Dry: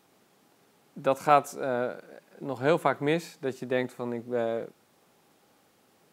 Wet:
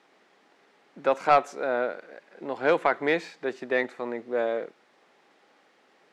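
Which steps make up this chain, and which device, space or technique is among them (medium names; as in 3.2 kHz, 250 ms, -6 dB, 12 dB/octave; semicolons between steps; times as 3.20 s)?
intercom (band-pass 320–4500 Hz; peaking EQ 1.9 kHz +6 dB 0.52 oct; saturation -12 dBFS, distortion -17 dB); trim +3 dB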